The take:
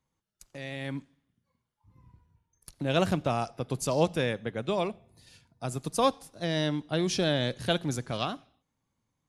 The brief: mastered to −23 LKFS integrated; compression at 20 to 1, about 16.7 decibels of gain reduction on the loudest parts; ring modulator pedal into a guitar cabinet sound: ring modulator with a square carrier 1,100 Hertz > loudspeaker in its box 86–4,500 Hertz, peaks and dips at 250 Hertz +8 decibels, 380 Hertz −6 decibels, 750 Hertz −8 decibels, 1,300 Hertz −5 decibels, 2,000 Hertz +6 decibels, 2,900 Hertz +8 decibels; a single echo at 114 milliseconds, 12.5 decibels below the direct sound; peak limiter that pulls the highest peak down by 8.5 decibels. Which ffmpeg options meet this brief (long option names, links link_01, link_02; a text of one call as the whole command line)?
ffmpeg -i in.wav -af "acompressor=threshold=-36dB:ratio=20,alimiter=level_in=8.5dB:limit=-24dB:level=0:latency=1,volume=-8.5dB,aecho=1:1:114:0.237,aeval=exprs='val(0)*sgn(sin(2*PI*1100*n/s))':channel_layout=same,highpass=86,equalizer=frequency=250:width_type=q:width=4:gain=8,equalizer=frequency=380:width_type=q:width=4:gain=-6,equalizer=frequency=750:width_type=q:width=4:gain=-8,equalizer=frequency=1300:width_type=q:width=4:gain=-5,equalizer=frequency=2000:width_type=q:width=4:gain=6,equalizer=frequency=2900:width_type=q:width=4:gain=8,lowpass=frequency=4500:width=0.5412,lowpass=frequency=4500:width=1.3066,volume=20dB" out.wav